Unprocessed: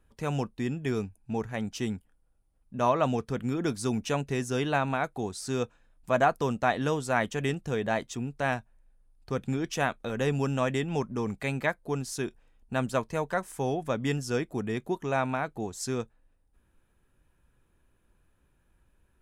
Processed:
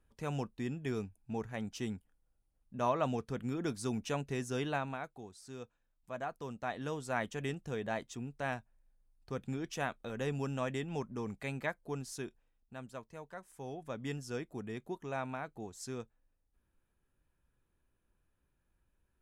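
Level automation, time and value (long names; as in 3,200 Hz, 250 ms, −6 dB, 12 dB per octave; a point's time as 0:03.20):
0:04.67 −7 dB
0:05.26 −17 dB
0:06.21 −17 dB
0:07.14 −8.5 dB
0:12.15 −8.5 dB
0:12.76 −18 dB
0:13.35 −18 dB
0:14.07 −10.5 dB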